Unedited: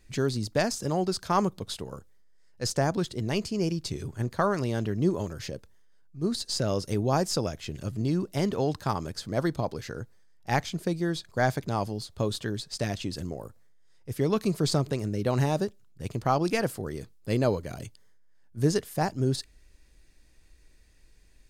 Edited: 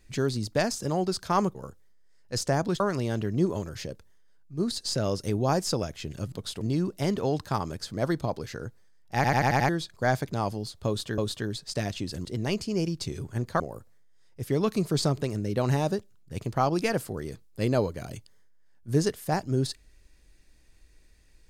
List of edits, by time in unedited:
0:01.55–0:01.84: move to 0:07.96
0:03.09–0:04.44: move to 0:13.29
0:10.50: stutter in place 0.09 s, 6 plays
0:12.22–0:12.53: repeat, 2 plays

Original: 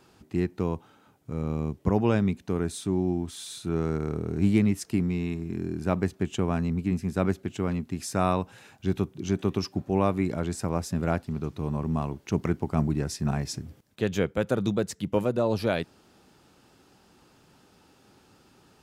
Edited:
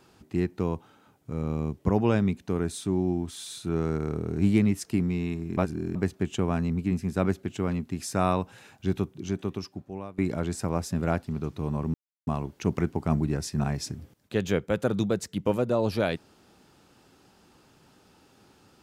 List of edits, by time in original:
0:05.57–0:05.95: reverse
0:08.86–0:10.18: fade out, to −22 dB
0:11.94: splice in silence 0.33 s

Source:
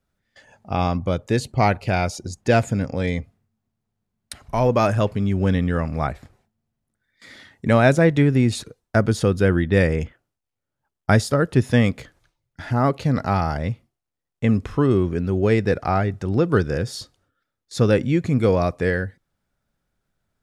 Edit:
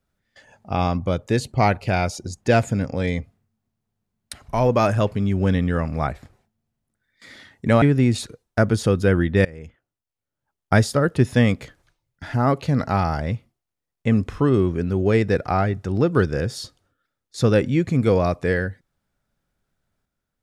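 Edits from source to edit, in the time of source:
0:07.82–0:08.19: remove
0:09.82–0:11.11: fade in, from −23 dB

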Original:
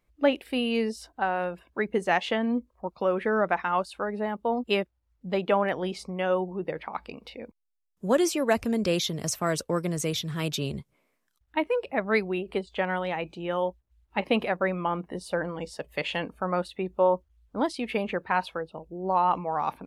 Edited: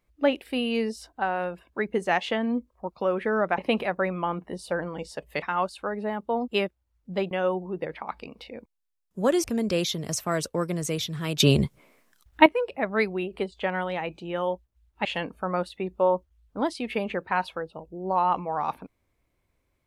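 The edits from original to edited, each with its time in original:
0:05.47–0:06.17: remove
0:08.30–0:08.59: remove
0:10.55–0:11.61: clip gain +12 dB
0:14.20–0:16.04: move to 0:03.58

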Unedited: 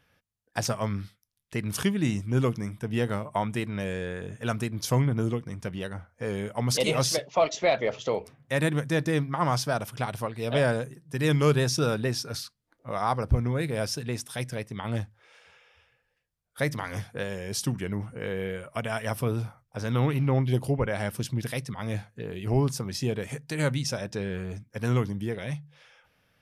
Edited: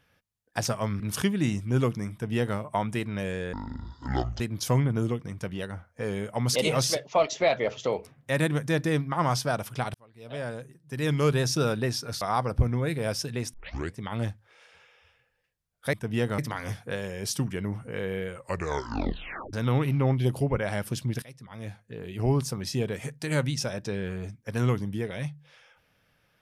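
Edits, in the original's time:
0:01.00–0:01.61: remove
0:02.73–0:03.18: duplicate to 0:16.66
0:04.14–0:04.62: play speed 55%
0:10.16–0:11.77: fade in linear
0:12.43–0:12.94: remove
0:14.26: tape start 0.43 s
0:18.59: tape stop 1.22 s
0:21.50–0:22.65: fade in, from −19 dB

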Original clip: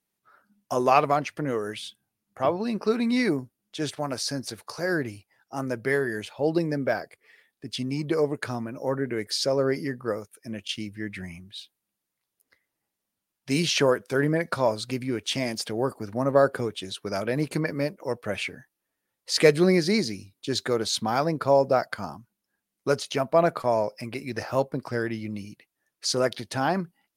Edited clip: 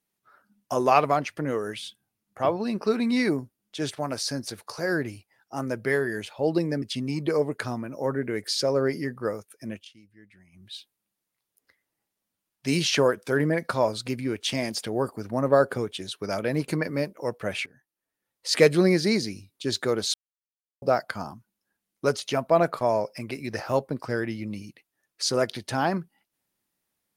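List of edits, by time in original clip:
0:06.82–0:07.65: remove
0:10.55–0:11.51: duck −20 dB, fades 0.16 s
0:18.49–0:19.37: fade in, from −16.5 dB
0:20.97–0:21.65: silence

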